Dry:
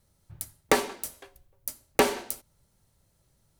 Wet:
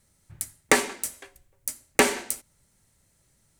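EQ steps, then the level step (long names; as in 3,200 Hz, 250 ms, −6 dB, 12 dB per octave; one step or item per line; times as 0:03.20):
graphic EQ with 10 bands 250 Hz +4 dB, 2,000 Hz +8 dB, 8,000 Hz +10 dB
−1.0 dB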